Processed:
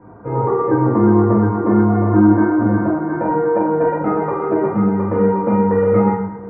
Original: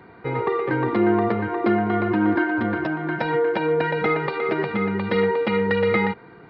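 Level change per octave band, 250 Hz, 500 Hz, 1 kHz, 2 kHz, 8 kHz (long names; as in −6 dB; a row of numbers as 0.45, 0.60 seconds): +8.5 dB, +5.0 dB, +5.0 dB, −6.5 dB, can't be measured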